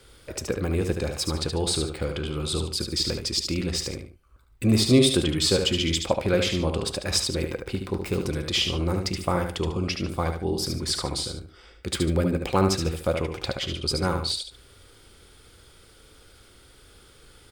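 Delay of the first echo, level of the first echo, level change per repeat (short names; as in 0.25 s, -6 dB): 73 ms, -6.0 dB, -10.0 dB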